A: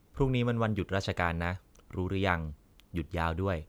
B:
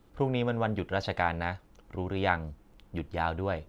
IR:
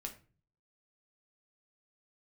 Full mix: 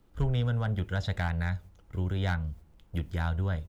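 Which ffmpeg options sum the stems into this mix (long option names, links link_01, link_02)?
-filter_complex "[0:a]acrossover=split=240[link_01][link_02];[link_02]acompressor=threshold=-37dB:ratio=6[link_03];[link_01][link_03]amix=inputs=2:normalize=0,equalizer=frequency=1200:width=4.3:gain=-13,volume=0.5dB,asplit=2[link_04][link_05];[link_05]volume=-11dB[link_06];[1:a]volume=20dB,asoftclip=hard,volume=-20dB,adelay=0.5,volume=-5.5dB,asplit=2[link_07][link_08];[link_08]apad=whole_len=162317[link_09];[link_04][link_09]sidechaingate=range=-33dB:threshold=-54dB:ratio=16:detection=peak[link_10];[2:a]atrim=start_sample=2205[link_11];[link_06][link_11]afir=irnorm=-1:irlink=0[link_12];[link_10][link_07][link_12]amix=inputs=3:normalize=0,lowshelf=frequency=62:gain=5.5"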